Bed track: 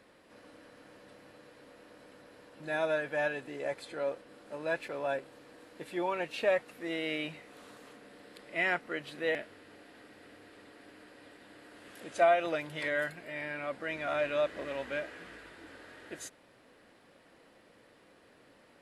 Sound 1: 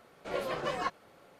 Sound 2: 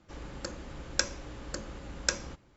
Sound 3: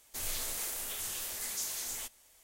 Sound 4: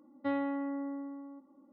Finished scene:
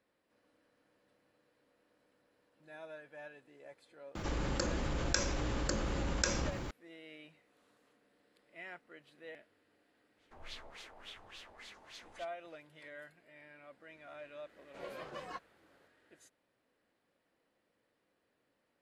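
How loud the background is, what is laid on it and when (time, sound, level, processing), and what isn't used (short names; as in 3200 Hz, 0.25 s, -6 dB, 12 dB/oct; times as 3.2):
bed track -18.5 dB
4.15 add 2 -5.5 dB + fast leveller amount 70%
10.17 add 3 -10 dB + LFO low-pass sine 3.5 Hz 760–3800 Hz
14.49 add 1 -12 dB
not used: 4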